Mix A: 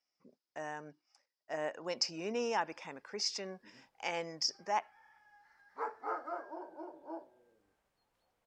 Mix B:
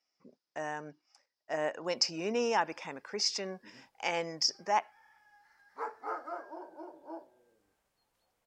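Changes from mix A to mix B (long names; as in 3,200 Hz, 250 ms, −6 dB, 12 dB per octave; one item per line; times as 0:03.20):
speech +4.5 dB
background: add high-shelf EQ 4,700 Hz +8 dB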